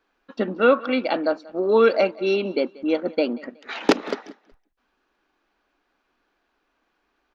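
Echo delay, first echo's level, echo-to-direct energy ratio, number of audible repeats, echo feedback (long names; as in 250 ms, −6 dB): 185 ms, −22.0 dB, −21.5 dB, 2, 29%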